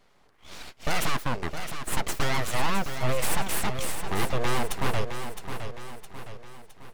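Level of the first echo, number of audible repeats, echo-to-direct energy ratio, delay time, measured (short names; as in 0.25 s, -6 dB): -8.5 dB, 5, -7.5 dB, 0.663 s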